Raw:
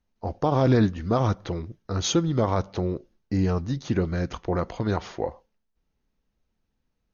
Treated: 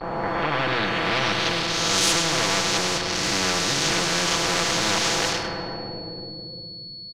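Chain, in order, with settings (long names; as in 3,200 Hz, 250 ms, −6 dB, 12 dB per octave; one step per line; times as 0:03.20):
peak hold with a rise ahead of every peak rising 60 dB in 0.69 s
high-pass filter 240 Hz 6 dB per octave
high-shelf EQ 4,000 Hz −6 dB
comb filter 6 ms, depth 96%
leveller curve on the samples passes 3
bit reduction 6 bits
steady tone 4,400 Hz −35 dBFS
low-pass filter sweep 750 Hz → 5,400 Hz, 0:00.00–0:01.99
on a send: single-tap delay 102 ms −12 dB
on the sum: rectangular room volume 3,100 cubic metres, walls mixed, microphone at 0.7 metres
every bin compressed towards the loudest bin 4 to 1
level −7.5 dB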